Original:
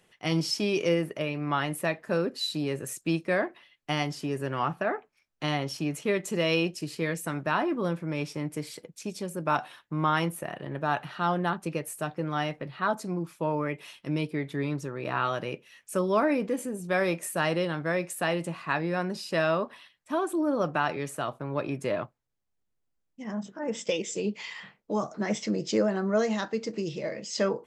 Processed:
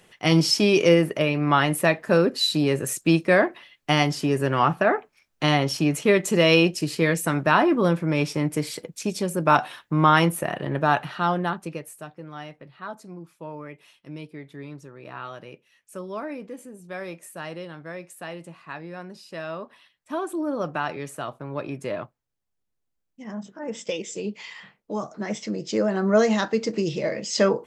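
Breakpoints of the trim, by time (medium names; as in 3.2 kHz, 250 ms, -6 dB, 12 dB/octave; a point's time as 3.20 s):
10.78 s +8.5 dB
11.58 s +1 dB
12.15 s -8.5 dB
19.43 s -8.5 dB
20.12 s -0.5 dB
25.67 s -0.5 dB
26.12 s +7 dB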